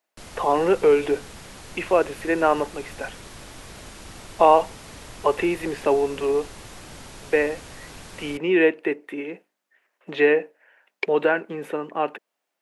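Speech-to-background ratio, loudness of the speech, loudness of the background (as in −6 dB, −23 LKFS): 19.0 dB, −22.5 LKFS, −41.5 LKFS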